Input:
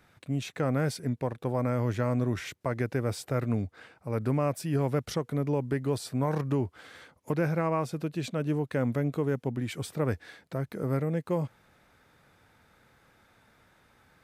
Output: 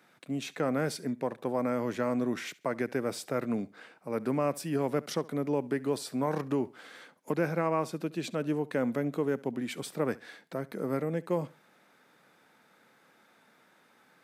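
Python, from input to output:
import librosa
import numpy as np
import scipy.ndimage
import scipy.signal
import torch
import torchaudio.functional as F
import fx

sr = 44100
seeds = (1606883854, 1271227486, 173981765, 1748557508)

p1 = scipy.signal.sosfilt(scipy.signal.butter(4, 180.0, 'highpass', fs=sr, output='sos'), x)
y = p1 + fx.echo_feedback(p1, sr, ms=69, feedback_pct=29, wet_db=-21.5, dry=0)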